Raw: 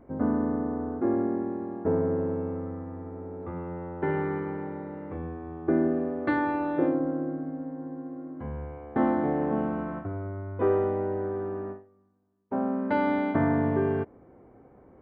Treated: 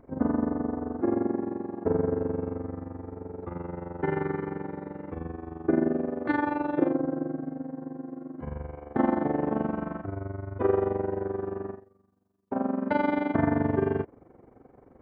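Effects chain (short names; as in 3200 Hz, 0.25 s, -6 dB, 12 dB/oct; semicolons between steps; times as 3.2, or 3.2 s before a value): AM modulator 23 Hz, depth 65%; gain +3 dB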